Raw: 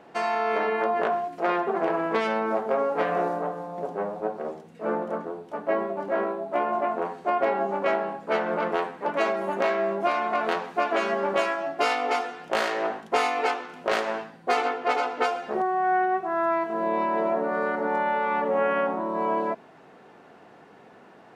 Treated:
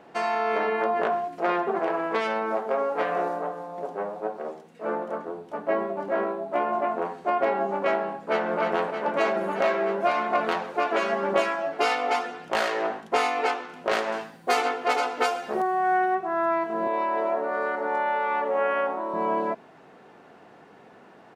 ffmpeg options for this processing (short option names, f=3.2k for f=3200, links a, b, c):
-filter_complex "[0:a]asettb=1/sr,asplit=3[a][b][c];[a]atrim=end=1.794[d];[b]atrim=start=1.79:end=5.28,asetpts=PTS-STARTPTS,afade=t=in:d=0.004:c=qsin,afade=t=out:st=3.486:d=0.004:c=qsin,highpass=f=310:p=1[e];[c]atrim=start=5.276[f];[d][e]acrossfade=d=0.004:c1=hsin:c2=qsin[g];[g][f]acrossfade=d=0.004:c1=qsin:c2=hsin,asplit=2[h][i];[i]afade=t=in:st=8.12:d=0.01,afade=t=out:st=8.59:d=0.01,aecho=0:1:310|620|930|1240|1550|1860|2170|2480|2790|3100|3410|3720:0.501187|0.426009|0.362108|0.307792|0.261623|0.222379|0.189023|0.160669|0.136569|0.116083|0.0986709|0.0838703[j];[h][j]amix=inputs=2:normalize=0,asettb=1/sr,asplit=3[k][l][m];[k]atrim=end=9.364[n];[l]atrim=start=9.36:end=12.82,asetpts=PTS-STARTPTS,afade=t=in:d=0.004:c=qsin,afade=t=out:st=3.456:d=0.004:c=qsin,aphaser=in_gain=1:out_gain=1:delay=2.7:decay=0.27:speed=1:type=triangular[o];[m]atrim=start=12.816[p];[n][o]acrossfade=d=0.004:c1=hsin:c2=qsin[q];[q][p]acrossfade=d=0.004:c1=qsin:c2=hsin,asettb=1/sr,asplit=3[r][s][t];[r]atrim=end=14.124[u];[s]atrim=start=14.12:end=16.15,asetpts=PTS-STARTPTS,afade=t=in:d=0.004:c=qsin,afade=t=out:st=2.026:d=0.004:c=qsin,aemphasis=mode=production:type=50kf[v];[t]atrim=start=16.146[w];[u][v]acrossfade=d=0.004:c1=hsin:c2=qsin[x];[x][w]acrossfade=d=0.004:c1=qsin:c2=hsin,asettb=1/sr,asplit=3[y][z][aa];[y]atrim=end=16.874[ab];[z]atrim=start=16.87:end=19.14,asetpts=PTS-STARTPTS,afade=t=in:d=0.004:c=qsin,afade=t=out:st=2.266:d=0.004:c=qsin,highpass=380[ac];[aa]atrim=start=19.136[ad];[ab][ac]acrossfade=d=0.004:c1=hsin:c2=qsin[ae];[ae][ad]acrossfade=d=0.004:c1=qsin:c2=hsin"